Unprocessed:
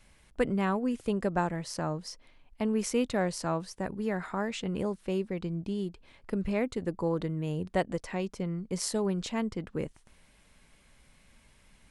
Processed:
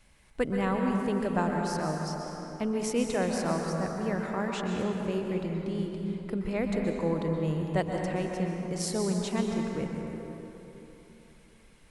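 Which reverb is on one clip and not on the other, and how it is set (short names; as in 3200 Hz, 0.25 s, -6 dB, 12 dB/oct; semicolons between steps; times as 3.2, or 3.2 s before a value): plate-style reverb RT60 3.4 s, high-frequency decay 0.5×, pre-delay 0.11 s, DRR 1 dB; gain -1 dB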